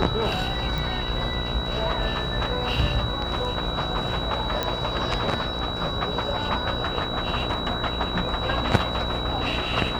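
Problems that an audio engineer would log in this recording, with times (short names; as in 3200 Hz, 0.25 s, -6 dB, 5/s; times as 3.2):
buzz 60 Hz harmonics 26 -32 dBFS
tone 3900 Hz -31 dBFS
0.78 pop
4.63 pop -10 dBFS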